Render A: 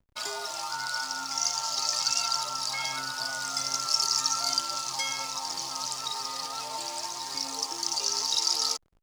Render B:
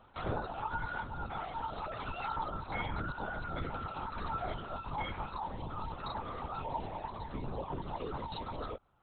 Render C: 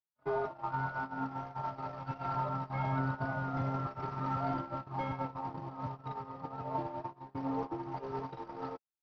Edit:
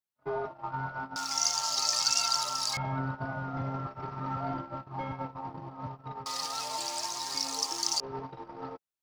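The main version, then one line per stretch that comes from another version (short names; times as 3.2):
C
1.16–2.77 from A
6.26–8 from A
not used: B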